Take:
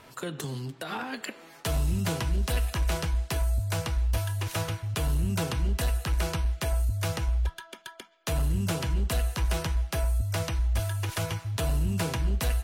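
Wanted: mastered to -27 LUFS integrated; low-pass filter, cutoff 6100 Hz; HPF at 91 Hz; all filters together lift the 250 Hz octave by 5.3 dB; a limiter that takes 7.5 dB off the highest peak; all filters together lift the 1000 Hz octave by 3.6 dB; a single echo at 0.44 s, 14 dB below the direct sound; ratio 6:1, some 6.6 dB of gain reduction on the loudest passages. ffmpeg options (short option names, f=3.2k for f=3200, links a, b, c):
-af "highpass=91,lowpass=6.1k,equalizer=f=250:t=o:g=8.5,equalizer=f=1k:t=o:g=4,acompressor=threshold=-29dB:ratio=6,alimiter=level_in=2dB:limit=-24dB:level=0:latency=1,volume=-2dB,aecho=1:1:440:0.2,volume=9dB"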